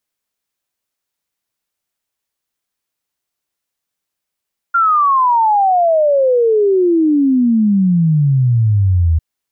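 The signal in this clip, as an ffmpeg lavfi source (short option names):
-f lavfi -i "aevalsrc='0.355*clip(min(t,4.45-t)/0.01,0,1)*sin(2*PI*1400*4.45/log(78/1400)*(exp(log(78/1400)*t/4.45)-1))':d=4.45:s=44100"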